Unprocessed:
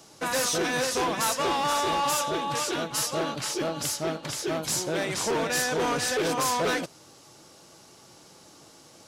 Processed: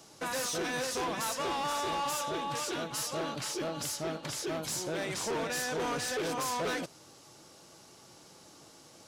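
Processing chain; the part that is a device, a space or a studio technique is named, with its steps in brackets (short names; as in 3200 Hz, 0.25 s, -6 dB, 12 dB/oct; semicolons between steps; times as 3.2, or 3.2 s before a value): soft clipper into limiter (soft clip -21.5 dBFS, distortion -22 dB; limiter -26 dBFS, peak gain reduction 3.5 dB); gain -3 dB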